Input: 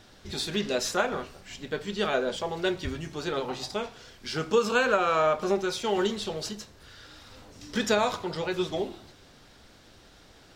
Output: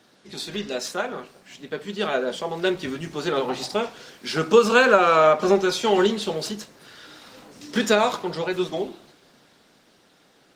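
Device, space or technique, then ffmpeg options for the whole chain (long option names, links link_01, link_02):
video call: -filter_complex "[0:a]asettb=1/sr,asplit=3[link_01][link_02][link_03];[link_01]atrim=end=5.324[link_04];[link_02]atrim=start=5.32:end=6.22,asetpts=PTS-STARTPTS,afade=type=in:duration=0.004:curve=qsin,afade=type=out:start_time=0.896:duration=0.004:curve=qsin,highshelf=frequency=7800:gain=-4[link_05];[link_03]atrim=start=6.216[link_06];[link_04][link_05]acrossfade=duration=0.004:curve1=hsin:curve2=qsin[link_07];[link_07][link_06]acrossfade=duration=0.004:curve1=qsin:curve2=hsin,highpass=frequency=150:width=0.5412,highpass=frequency=150:width=1.3066,dynaudnorm=framelen=370:gausssize=13:maxgain=16dB,volume=-1dB" -ar 48000 -c:a libopus -b:a 24k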